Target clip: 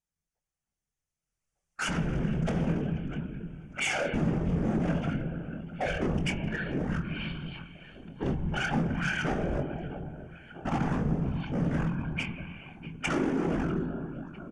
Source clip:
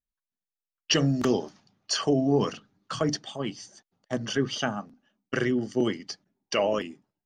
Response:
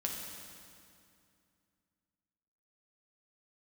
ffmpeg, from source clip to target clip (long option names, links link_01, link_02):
-filter_complex "[0:a]aecho=1:1:324|648|972:0.0708|0.0297|0.0125,asplit=2[link_01][link_02];[1:a]atrim=start_sample=2205,afade=type=out:start_time=0.3:duration=0.01,atrim=end_sample=13671,lowpass=4600[link_03];[link_02][link_03]afir=irnorm=-1:irlink=0,volume=-7dB[link_04];[link_01][link_04]amix=inputs=2:normalize=0,volume=27.5dB,asoftclip=hard,volume=-27.5dB,dynaudnorm=framelen=580:gausssize=3:maxgain=14dB,asetrate=22050,aresample=44100,afftfilt=real='hypot(re,im)*cos(2*PI*random(0))':imag='hypot(re,im)*sin(2*PI*random(1))':win_size=512:overlap=0.75,equalizer=frequency=100:width_type=o:width=0.33:gain=-10,equalizer=frequency=160:width_type=o:width=0.33:gain=7,equalizer=frequency=1000:width_type=o:width=0.33:gain=-5,equalizer=frequency=4000:width_type=o:width=0.33:gain=-12,equalizer=frequency=6300:width_type=o:width=0.33:gain=6,acompressor=threshold=-52dB:ratio=1.5,bandreject=frequency=60:width_type=h:width=6,bandreject=frequency=120:width_type=h:width=6,bandreject=frequency=180:width_type=h:width=6,asplit=2[link_05][link_06];[link_06]adelay=23,volume=-10dB[link_07];[link_05][link_07]amix=inputs=2:normalize=0,volume=4.5dB"